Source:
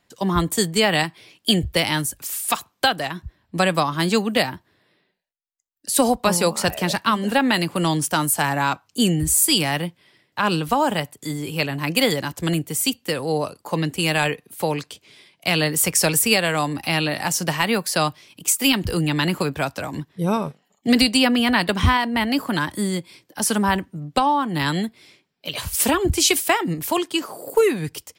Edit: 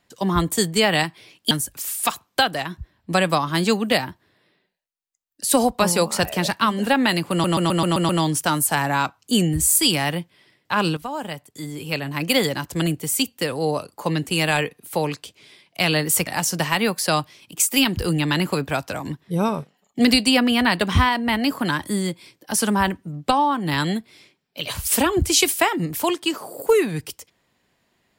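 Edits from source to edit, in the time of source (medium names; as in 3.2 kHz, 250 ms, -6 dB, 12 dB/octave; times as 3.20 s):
1.51–1.96 s: delete
7.76 s: stutter 0.13 s, 7 plays
10.64–12.12 s: fade in, from -12.5 dB
15.94–17.15 s: delete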